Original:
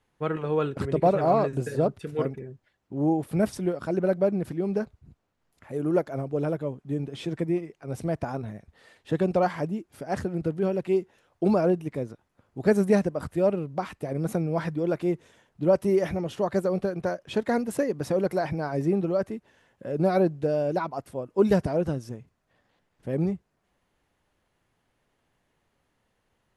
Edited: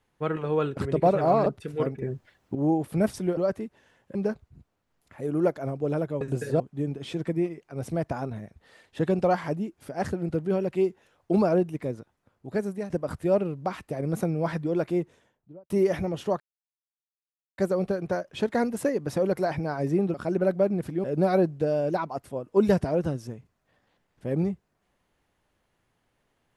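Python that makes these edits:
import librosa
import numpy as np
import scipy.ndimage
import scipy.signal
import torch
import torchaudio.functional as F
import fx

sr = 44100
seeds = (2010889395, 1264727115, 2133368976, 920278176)

y = fx.studio_fade_out(x, sr, start_s=14.98, length_s=0.84)
y = fx.edit(y, sr, fx.move(start_s=1.46, length_s=0.39, to_s=6.72),
    fx.clip_gain(start_s=2.41, length_s=0.53, db=9.5),
    fx.swap(start_s=3.76, length_s=0.9, other_s=19.08, other_length_s=0.78),
    fx.fade_out_to(start_s=12.08, length_s=0.94, floor_db=-16.0),
    fx.insert_silence(at_s=16.52, length_s=1.18), tone=tone)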